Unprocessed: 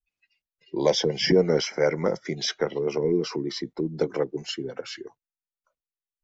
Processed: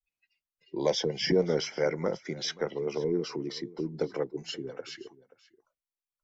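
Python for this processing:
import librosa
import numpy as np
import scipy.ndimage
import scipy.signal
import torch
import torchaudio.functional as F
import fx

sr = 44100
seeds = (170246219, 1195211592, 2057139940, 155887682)

y = x + 10.0 ** (-20.0 / 20.0) * np.pad(x, (int(529 * sr / 1000.0), 0))[:len(x)]
y = F.gain(torch.from_numpy(y), -5.5).numpy()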